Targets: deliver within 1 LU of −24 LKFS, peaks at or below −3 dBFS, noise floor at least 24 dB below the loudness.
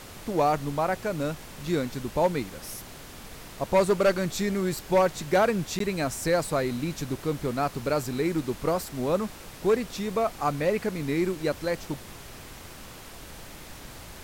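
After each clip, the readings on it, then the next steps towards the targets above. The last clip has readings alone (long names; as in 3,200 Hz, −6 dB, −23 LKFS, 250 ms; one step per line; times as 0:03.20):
number of dropouts 1; longest dropout 13 ms; background noise floor −44 dBFS; target noise floor −52 dBFS; integrated loudness −27.5 LKFS; sample peak −14.0 dBFS; target loudness −24.0 LKFS
→ repair the gap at 0:05.79, 13 ms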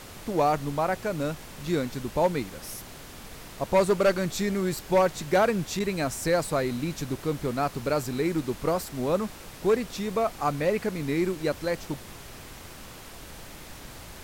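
number of dropouts 0; background noise floor −44 dBFS; target noise floor −52 dBFS
→ noise reduction from a noise print 8 dB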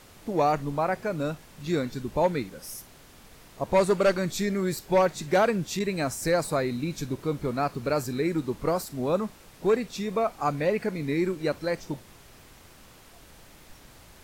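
background noise floor −52 dBFS; integrated loudness −27.5 LKFS; sample peak −14.5 dBFS; target loudness −24.0 LKFS
→ level +3.5 dB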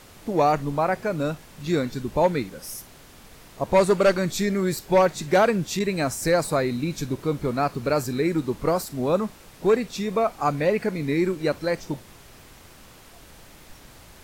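integrated loudness −24.0 LKFS; sample peak −11.0 dBFS; background noise floor −49 dBFS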